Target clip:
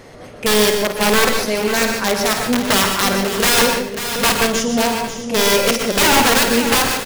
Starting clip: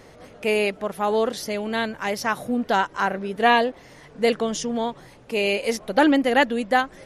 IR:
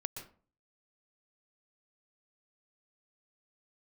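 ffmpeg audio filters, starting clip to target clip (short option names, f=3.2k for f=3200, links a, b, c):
-filter_complex "[0:a]aeval=exprs='(mod(6.68*val(0)+1,2)-1)/6.68':c=same,aecho=1:1:52|150|542|622:0.355|0.224|0.316|0.211[a];[1:a]atrim=start_sample=2205,afade=t=out:st=0.21:d=0.01,atrim=end_sample=9702[b];[a][b]afir=irnorm=-1:irlink=0,volume=8.5dB"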